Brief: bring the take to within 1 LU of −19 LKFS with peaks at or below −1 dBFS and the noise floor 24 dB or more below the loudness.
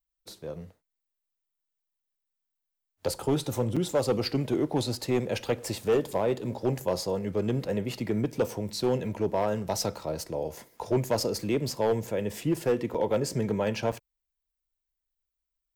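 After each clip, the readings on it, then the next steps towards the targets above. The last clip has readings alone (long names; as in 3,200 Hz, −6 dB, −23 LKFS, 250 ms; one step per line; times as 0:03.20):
share of clipped samples 0.7%; peaks flattened at −18.5 dBFS; number of dropouts 3; longest dropout 5.8 ms; integrated loudness −29.0 LKFS; sample peak −18.5 dBFS; target loudness −19.0 LKFS
→ clipped peaks rebuilt −18.5 dBFS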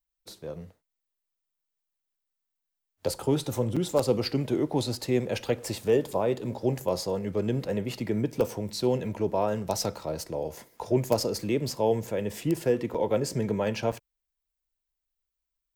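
share of clipped samples 0.0%; number of dropouts 3; longest dropout 5.8 ms
→ repair the gap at 0:03.76/0:12.94/0:13.92, 5.8 ms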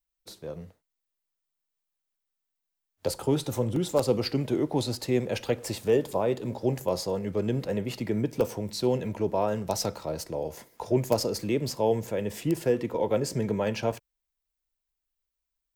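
number of dropouts 0; integrated loudness −28.5 LKFS; sample peak −9.5 dBFS; target loudness −19.0 LKFS
→ level +9.5 dB
brickwall limiter −1 dBFS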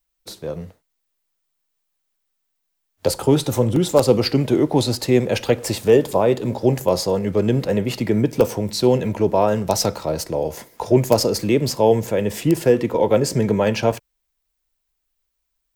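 integrated loudness −19.0 LKFS; sample peak −1.0 dBFS; background noise floor −75 dBFS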